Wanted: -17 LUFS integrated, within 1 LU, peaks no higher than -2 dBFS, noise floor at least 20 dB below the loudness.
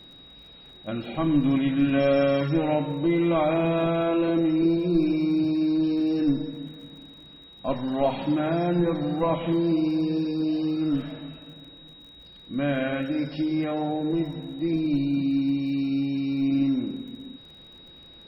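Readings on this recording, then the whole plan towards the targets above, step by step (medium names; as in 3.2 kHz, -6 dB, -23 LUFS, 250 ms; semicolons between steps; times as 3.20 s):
tick rate 34 per s; steady tone 3.8 kHz; tone level -47 dBFS; loudness -25.0 LUFS; peak level -12.0 dBFS; loudness target -17.0 LUFS
-> de-click; band-stop 3.8 kHz, Q 30; trim +8 dB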